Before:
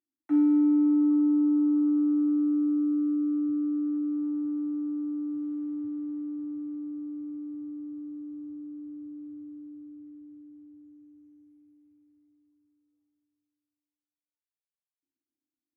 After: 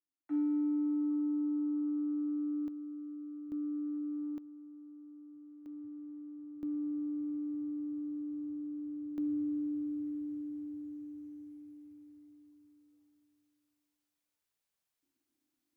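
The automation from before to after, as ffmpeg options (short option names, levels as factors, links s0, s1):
-af "asetnsamples=n=441:p=0,asendcmd='2.68 volume volume -17dB;3.52 volume volume -8.5dB;4.38 volume volume -20dB;5.66 volume volume -12dB;6.63 volume volume 0dB;9.18 volume volume 8.5dB',volume=0.316"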